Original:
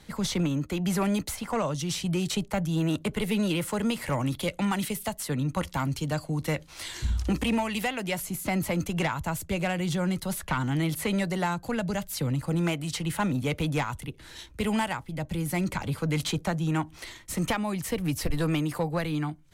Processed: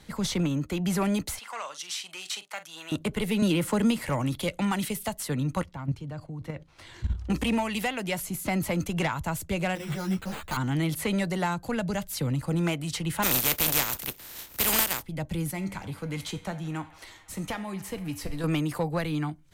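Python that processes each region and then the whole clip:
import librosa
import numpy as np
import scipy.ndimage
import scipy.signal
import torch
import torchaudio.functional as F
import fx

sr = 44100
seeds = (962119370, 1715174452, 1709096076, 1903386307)

y = fx.chain(x, sr, fx.highpass(hz=1200.0, slope=12),
    fx.high_shelf(hz=11000.0, db=-7.5),
    fx.doubler(ms=44.0, db=-13), at=(1.39, 2.92))
y = fx.chain(y, sr, fx.peak_eq(hz=250.0, db=5.5, octaves=0.83),
    fx.band_squash(depth_pct=70), at=(3.42, 3.99))
y = fx.chain(y, sr, fx.lowpass(hz=1600.0, slope=6),
    fx.peak_eq(hz=110.0, db=7.5, octaves=0.61),
    fx.level_steps(step_db=12), at=(5.63, 7.3))
y = fx.chain(y, sr, fx.resample_bad(factor=8, down='none', up='hold'),
    fx.ensemble(), at=(9.75, 10.57))
y = fx.spec_flatten(y, sr, power=0.31, at=(13.22, 15.01), fade=0.02)
y = fx.peak_eq(y, sr, hz=14000.0, db=15.0, octaves=0.25, at=(13.22, 15.01), fade=0.02)
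y = fx.chain(y, sr, fx.comb_fb(f0_hz=97.0, decay_s=0.39, harmonics='all', damping=0.0, mix_pct=60),
    fx.echo_wet_bandpass(ms=83, feedback_pct=83, hz=1500.0, wet_db=-17), at=(15.51, 18.44))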